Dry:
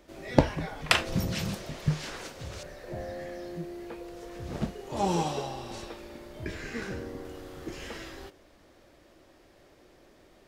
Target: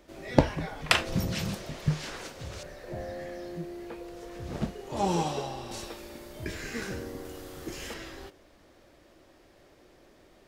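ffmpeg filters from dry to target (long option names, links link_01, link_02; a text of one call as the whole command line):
ffmpeg -i in.wav -filter_complex "[0:a]asettb=1/sr,asplit=3[link_01][link_02][link_03];[link_01]atrim=end=5.714[link_04];[link_02]atrim=start=5.71:end=7.94,asetpts=PTS-STARTPTS,afade=type=in:duration=0.004:curve=qsin,afade=type=out:start_time=2.226:duration=0.004:curve=qsin,highshelf=frequency=5900:gain=11[link_05];[link_03]atrim=start=7.936[link_06];[link_04][link_05]acrossfade=duration=0.004:curve1=hsin:curve2=qsin[link_07];[link_07][link_06]acrossfade=duration=0.004:curve1=qsin:curve2=hsin" out.wav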